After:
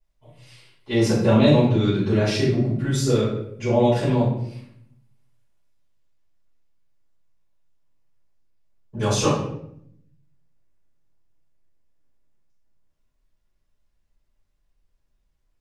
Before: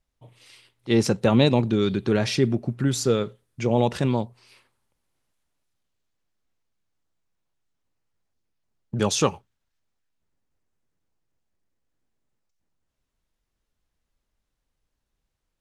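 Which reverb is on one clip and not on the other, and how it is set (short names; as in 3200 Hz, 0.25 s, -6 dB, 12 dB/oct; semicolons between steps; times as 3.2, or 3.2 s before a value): shoebox room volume 150 m³, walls mixed, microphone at 5 m; gain -13.5 dB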